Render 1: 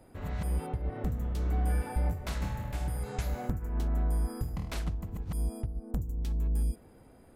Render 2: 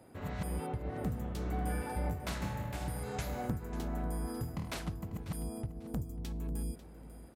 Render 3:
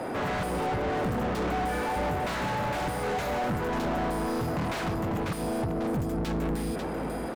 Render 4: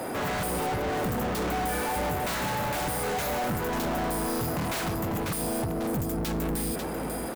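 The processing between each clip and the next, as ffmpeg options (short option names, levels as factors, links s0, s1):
-af "highpass=95,aecho=1:1:544|1088|1632:0.178|0.0462|0.012"
-filter_complex "[0:a]asplit=2[s0][s1];[s1]highpass=f=720:p=1,volume=112,asoftclip=type=tanh:threshold=0.0944[s2];[s0][s2]amix=inputs=2:normalize=0,lowpass=f=1300:p=1,volume=0.501,aeval=exprs='sgn(val(0))*max(abs(val(0))-0.00119,0)':c=same"
-af "aemphasis=mode=production:type=50fm"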